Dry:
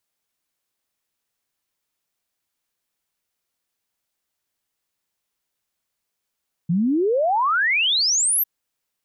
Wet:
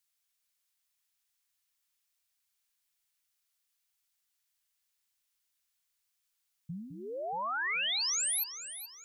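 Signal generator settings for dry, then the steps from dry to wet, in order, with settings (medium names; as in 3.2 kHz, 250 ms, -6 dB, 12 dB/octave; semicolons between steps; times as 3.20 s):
log sweep 160 Hz -> 13 kHz 1.75 s -16.5 dBFS
amplifier tone stack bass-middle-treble 10-0-10; compression 2.5:1, threshold -37 dBFS; on a send: echo whose repeats swap between lows and highs 211 ms, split 2.4 kHz, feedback 62%, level -8 dB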